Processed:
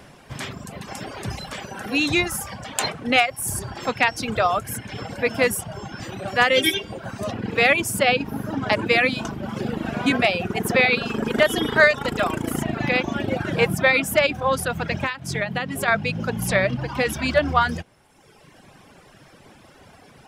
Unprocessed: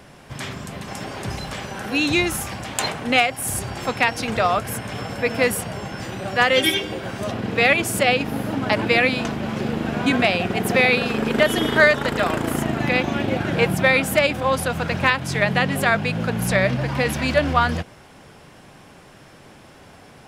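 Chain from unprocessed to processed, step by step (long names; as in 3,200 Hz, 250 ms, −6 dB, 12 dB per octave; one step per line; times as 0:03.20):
reverb reduction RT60 1.3 s
0:15.02–0:15.88: downward compressor 12 to 1, threshold −21 dBFS, peak gain reduction 10 dB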